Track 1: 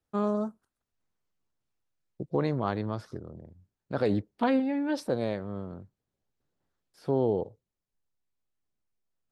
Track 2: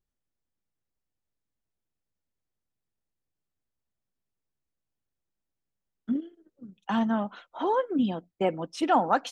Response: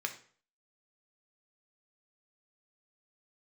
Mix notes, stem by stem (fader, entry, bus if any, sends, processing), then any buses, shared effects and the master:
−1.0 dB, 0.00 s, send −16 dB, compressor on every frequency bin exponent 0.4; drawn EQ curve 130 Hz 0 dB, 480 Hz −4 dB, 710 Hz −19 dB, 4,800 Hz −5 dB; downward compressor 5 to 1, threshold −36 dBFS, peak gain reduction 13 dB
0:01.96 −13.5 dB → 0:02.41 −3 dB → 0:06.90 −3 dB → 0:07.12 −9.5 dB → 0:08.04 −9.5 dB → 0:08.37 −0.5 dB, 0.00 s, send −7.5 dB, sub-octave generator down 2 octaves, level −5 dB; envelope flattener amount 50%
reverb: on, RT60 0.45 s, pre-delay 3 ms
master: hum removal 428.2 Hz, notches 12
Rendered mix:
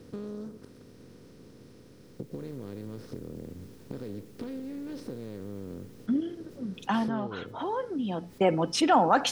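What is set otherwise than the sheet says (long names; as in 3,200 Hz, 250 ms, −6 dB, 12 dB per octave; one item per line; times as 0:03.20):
stem 2: missing sub-octave generator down 2 octaves, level −5 dB
reverb return −8.0 dB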